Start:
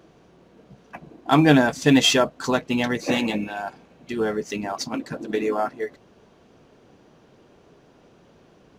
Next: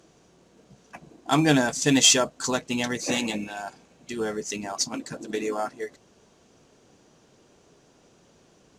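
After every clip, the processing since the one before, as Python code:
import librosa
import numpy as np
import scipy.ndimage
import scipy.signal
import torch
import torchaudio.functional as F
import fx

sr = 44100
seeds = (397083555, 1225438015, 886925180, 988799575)

y = fx.peak_eq(x, sr, hz=7400.0, db=15.0, octaves=1.3)
y = y * 10.0 ** (-5.0 / 20.0)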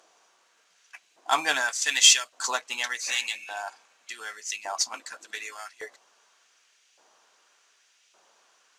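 y = fx.filter_lfo_highpass(x, sr, shape='saw_up', hz=0.86, low_hz=770.0, high_hz=2500.0, q=1.3)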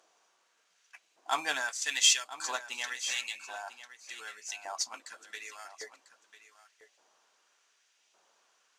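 y = x + 10.0 ** (-14.0 / 20.0) * np.pad(x, (int(996 * sr / 1000.0), 0))[:len(x)]
y = y * 10.0 ** (-7.0 / 20.0)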